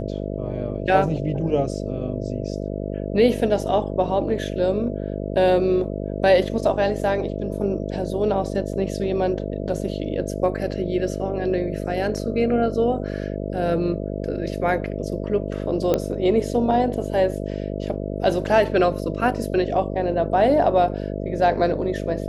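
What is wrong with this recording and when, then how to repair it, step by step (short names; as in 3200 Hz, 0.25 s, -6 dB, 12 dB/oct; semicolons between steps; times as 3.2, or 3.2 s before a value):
buzz 50 Hz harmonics 13 -28 dBFS
8.73 gap 4.6 ms
15.94 pop -8 dBFS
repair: de-click; de-hum 50 Hz, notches 13; interpolate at 8.73, 4.6 ms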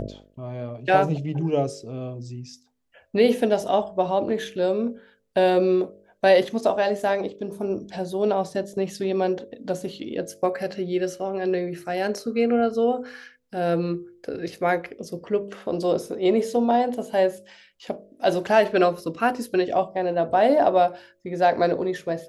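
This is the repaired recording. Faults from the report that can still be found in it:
none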